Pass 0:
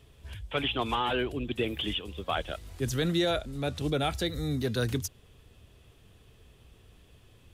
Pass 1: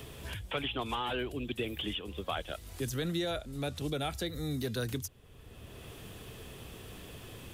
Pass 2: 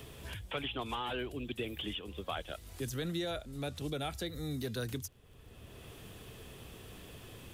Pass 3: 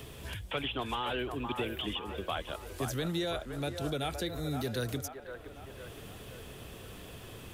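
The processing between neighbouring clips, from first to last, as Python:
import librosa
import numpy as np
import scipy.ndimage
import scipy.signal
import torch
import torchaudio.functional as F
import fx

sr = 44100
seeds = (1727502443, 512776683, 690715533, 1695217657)

y1 = fx.high_shelf(x, sr, hz=10000.0, db=9.5)
y1 = fx.band_squash(y1, sr, depth_pct=70)
y1 = F.gain(torch.from_numpy(y1), -5.5).numpy()
y2 = fx.dmg_crackle(y1, sr, seeds[0], per_s=36.0, level_db=-52.0)
y2 = F.gain(torch.from_numpy(y2), -3.0).numpy()
y3 = fx.echo_wet_bandpass(y2, sr, ms=517, feedback_pct=54, hz=910.0, wet_db=-5.0)
y3 = F.gain(torch.from_numpy(y3), 3.0).numpy()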